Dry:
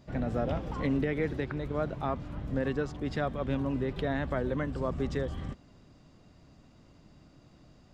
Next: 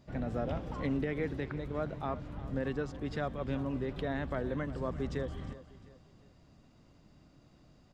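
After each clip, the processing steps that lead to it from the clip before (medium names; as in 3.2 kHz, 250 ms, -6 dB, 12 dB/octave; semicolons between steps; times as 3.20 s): feedback delay 354 ms, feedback 39%, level -16 dB; trim -4 dB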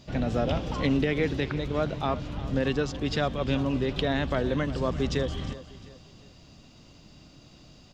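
high-order bell 4.2 kHz +9 dB; trim +8 dB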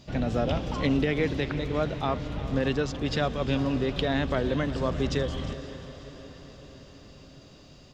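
echo that smears into a reverb 520 ms, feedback 60%, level -15 dB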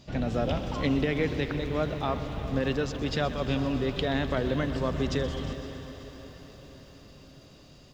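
bit-crushed delay 127 ms, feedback 80%, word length 9-bit, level -15 dB; trim -1.5 dB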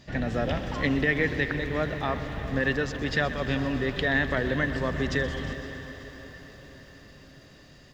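peaking EQ 1.8 kHz +14.5 dB 0.31 oct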